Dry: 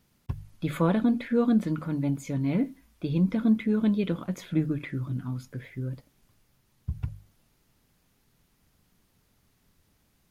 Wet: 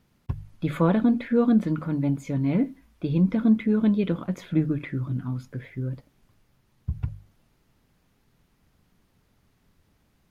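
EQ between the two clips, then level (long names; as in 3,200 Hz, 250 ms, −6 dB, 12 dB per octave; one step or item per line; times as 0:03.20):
high-shelf EQ 4,100 Hz −9 dB
+3.0 dB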